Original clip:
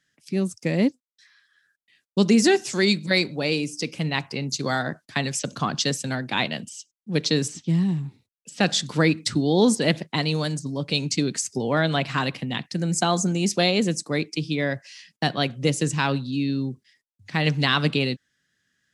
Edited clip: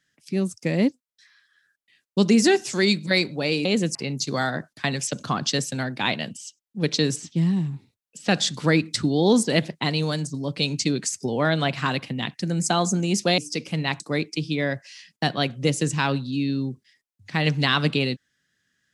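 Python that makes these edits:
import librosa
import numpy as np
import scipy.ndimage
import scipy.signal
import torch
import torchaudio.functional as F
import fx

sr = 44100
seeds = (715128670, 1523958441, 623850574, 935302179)

y = fx.edit(x, sr, fx.swap(start_s=3.65, length_s=0.62, other_s=13.7, other_length_s=0.3), tone=tone)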